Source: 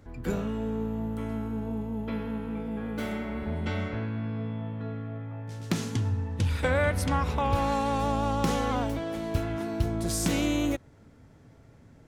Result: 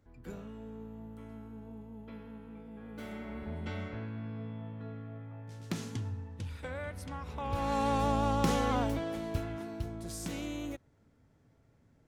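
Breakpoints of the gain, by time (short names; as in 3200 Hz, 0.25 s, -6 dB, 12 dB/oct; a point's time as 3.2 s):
2.73 s -14.5 dB
3.3 s -8 dB
5.91 s -8 dB
6.59 s -15 dB
7.22 s -15 dB
7.84 s -2 dB
8.94 s -2 dB
9.99 s -12 dB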